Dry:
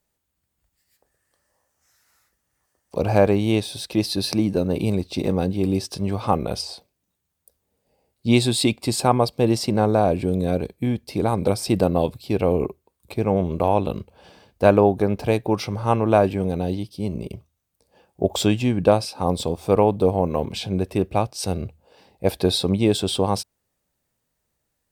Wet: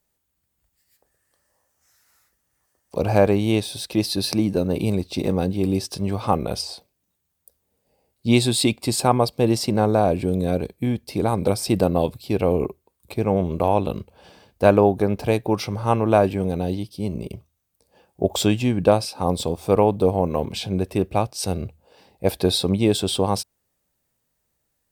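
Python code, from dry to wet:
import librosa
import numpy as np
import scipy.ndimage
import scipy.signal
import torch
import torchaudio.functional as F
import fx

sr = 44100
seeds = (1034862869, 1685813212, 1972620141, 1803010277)

y = fx.high_shelf(x, sr, hz=9300.0, db=4.5)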